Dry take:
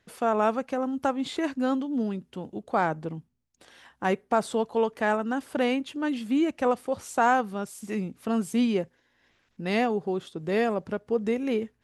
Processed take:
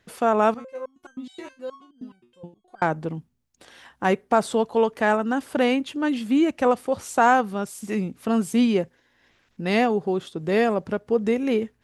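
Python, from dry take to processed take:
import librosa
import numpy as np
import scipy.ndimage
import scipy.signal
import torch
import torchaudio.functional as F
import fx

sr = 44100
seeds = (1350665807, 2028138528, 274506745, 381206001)

y = fx.resonator_held(x, sr, hz=9.5, low_hz=120.0, high_hz=1600.0, at=(0.54, 2.82))
y = y * librosa.db_to_amplitude(4.5)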